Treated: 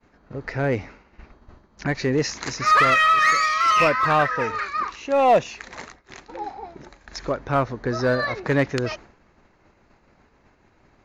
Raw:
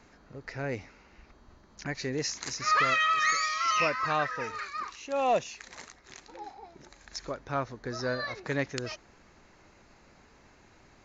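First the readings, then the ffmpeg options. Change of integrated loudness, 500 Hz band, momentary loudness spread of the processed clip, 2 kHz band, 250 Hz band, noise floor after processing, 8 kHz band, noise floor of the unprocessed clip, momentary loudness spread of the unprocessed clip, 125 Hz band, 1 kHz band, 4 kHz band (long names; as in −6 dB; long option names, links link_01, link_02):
+9.0 dB, +10.5 dB, 21 LU, +8.0 dB, +11.0 dB, −60 dBFS, can't be measured, −59 dBFS, 21 LU, +11.5 dB, +9.5 dB, +5.0 dB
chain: -filter_complex "[0:a]lowpass=frequency=2100:poles=1,agate=range=-33dB:threshold=-50dB:ratio=3:detection=peak,asplit=2[link_01][link_02];[link_02]asoftclip=type=hard:threshold=-29dB,volume=-5dB[link_03];[link_01][link_03]amix=inputs=2:normalize=0,volume=8dB"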